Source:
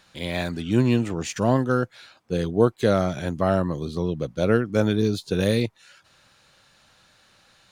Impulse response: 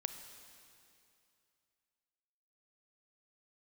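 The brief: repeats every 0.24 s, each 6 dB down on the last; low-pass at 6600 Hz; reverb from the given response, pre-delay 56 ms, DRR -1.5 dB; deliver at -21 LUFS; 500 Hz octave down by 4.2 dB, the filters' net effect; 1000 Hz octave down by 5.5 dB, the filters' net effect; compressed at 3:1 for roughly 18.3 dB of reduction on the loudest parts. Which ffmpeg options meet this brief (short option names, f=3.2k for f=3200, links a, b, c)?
-filter_complex "[0:a]lowpass=6.6k,equalizer=f=500:t=o:g=-3.5,equalizer=f=1k:t=o:g=-7,acompressor=threshold=-42dB:ratio=3,aecho=1:1:240|480|720|960|1200|1440:0.501|0.251|0.125|0.0626|0.0313|0.0157,asplit=2[a][b];[1:a]atrim=start_sample=2205,adelay=56[c];[b][c]afir=irnorm=-1:irlink=0,volume=2dB[d];[a][d]amix=inputs=2:normalize=0,volume=15.5dB"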